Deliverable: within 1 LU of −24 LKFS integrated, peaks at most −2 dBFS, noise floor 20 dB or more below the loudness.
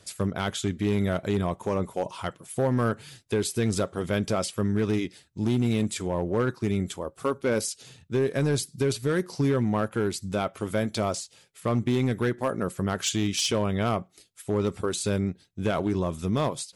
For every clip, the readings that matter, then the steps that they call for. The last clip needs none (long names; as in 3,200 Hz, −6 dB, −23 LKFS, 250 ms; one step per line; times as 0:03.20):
share of clipped samples 1.5%; peaks flattened at −18.0 dBFS; integrated loudness −27.5 LKFS; sample peak −18.0 dBFS; target loudness −24.0 LKFS
→ clipped peaks rebuilt −18 dBFS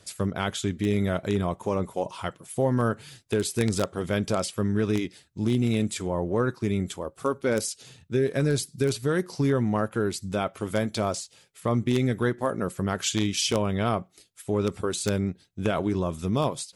share of clipped samples 0.0%; integrated loudness −27.5 LKFS; sample peak −9.0 dBFS; target loudness −24.0 LKFS
→ level +3.5 dB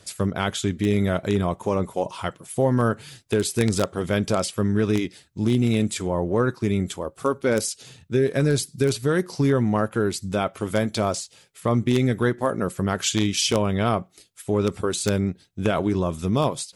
integrated loudness −24.0 LKFS; sample peak −5.5 dBFS; background noise floor −57 dBFS